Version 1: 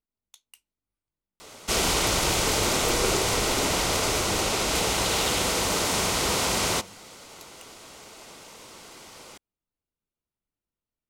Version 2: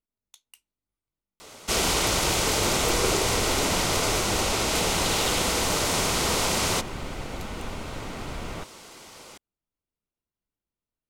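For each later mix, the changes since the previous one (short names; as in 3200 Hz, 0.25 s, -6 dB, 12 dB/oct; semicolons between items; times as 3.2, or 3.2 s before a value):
second sound: unmuted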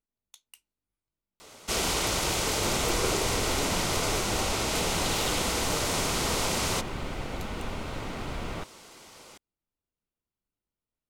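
first sound -4.0 dB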